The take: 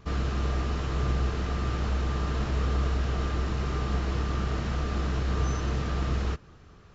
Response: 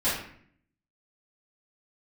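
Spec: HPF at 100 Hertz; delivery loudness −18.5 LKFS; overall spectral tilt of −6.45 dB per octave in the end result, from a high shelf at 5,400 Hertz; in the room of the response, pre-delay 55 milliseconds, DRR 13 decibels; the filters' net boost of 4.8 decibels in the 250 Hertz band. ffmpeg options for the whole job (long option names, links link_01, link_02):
-filter_complex "[0:a]highpass=100,equalizer=frequency=250:width_type=o:gain=7,highshelf=frequency=5400:gain=-9,asplit=2[link_01][link_02];[1:a]atrim=start_sample=2205,adelay=55[link_03];[link_02][link_03]afir=irnorm=-1:irlink=0,volume=-25dB[link_04];[link_01][link_04]amix=inputs=2:normalize=0,volume=12.5dB"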